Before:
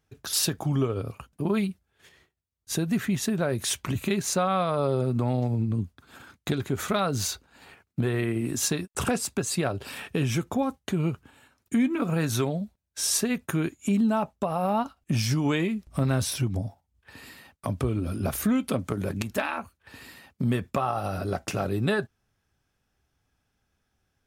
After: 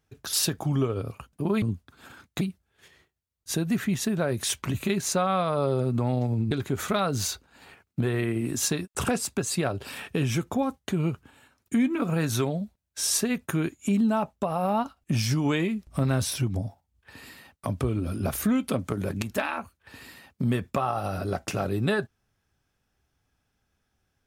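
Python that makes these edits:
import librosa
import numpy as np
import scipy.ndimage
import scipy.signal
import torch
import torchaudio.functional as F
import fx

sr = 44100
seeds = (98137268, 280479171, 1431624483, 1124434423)

y = fx.edit(x, sr, fx.move(start_s=5.72, length_s=0.79, to_s=1.62), tone=tone)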